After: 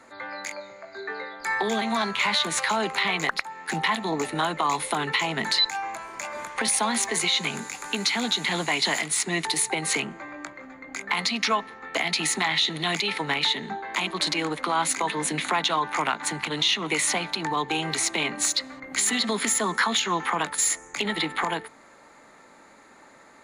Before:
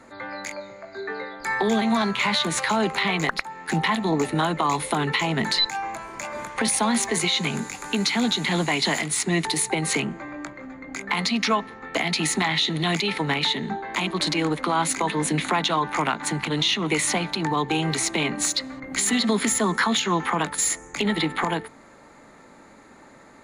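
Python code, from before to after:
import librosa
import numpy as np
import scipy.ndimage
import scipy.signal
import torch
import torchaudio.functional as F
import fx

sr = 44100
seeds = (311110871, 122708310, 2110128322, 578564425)

y = fx.low_shelf(x, sr, hz=350.0, db=-10.5)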